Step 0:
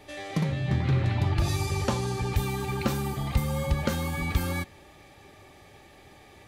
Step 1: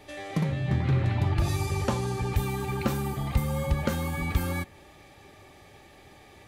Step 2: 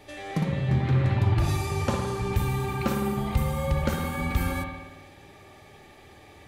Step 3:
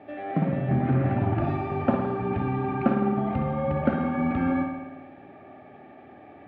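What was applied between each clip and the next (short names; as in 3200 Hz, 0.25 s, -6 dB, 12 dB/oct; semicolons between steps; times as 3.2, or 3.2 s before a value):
dynamic EQ 4700 Hz, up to -4 dB, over -49 dBFS, Q 0.88
spring tank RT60 1.2 s, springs 53 ms, chirp 25 ms, DRR 3 dB
speaker cabinet 160–2100 Hz, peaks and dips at 260 Hz +9 dB, 460 Hz -4 dB, 690 Hz +9 dB, 1000 Hz -8 dB, 2000 Hz -6 dB; gain +3 dB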